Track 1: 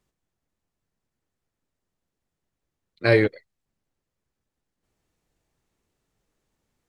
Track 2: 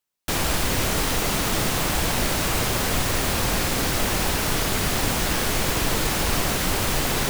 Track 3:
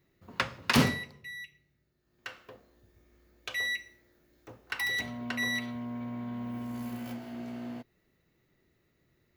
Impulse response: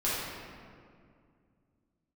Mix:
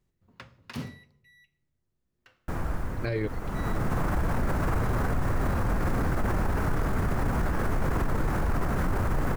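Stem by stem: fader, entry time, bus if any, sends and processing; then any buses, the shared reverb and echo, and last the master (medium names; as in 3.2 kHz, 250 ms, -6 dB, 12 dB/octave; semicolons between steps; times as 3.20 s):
-6.5 dB, 0.00 s, no send, none
+2.0 dB, 2.20 s, no send, resonant high shelf 2.2 kHz -14 dB, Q 1.5; auto duck -18 dB, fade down 1.70 s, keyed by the first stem
-17.5 dB, 0.00 s, no send, none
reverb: none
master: bass shelf 220 Hz +11 dB; peak limiter -19 dBFS, peak gain reduction 16.5 dB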